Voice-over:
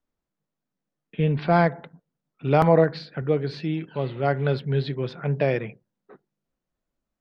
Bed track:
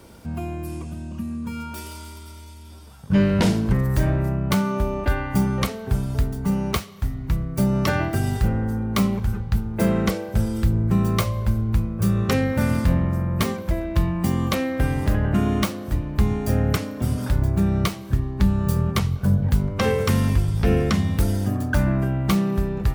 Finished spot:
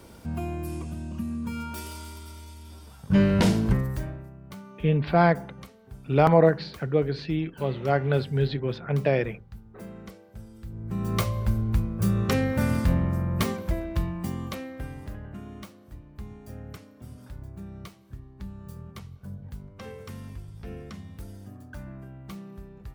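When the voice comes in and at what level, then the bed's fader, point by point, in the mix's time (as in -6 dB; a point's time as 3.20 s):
3.65 s, -0.5 dB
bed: 3.71 s -2 dB
4.31 s -22 dB
10.60 s -22 dB
11.21 s -3.5 dB
13.64 s -3.5 dB
15.41 s -20.5 dB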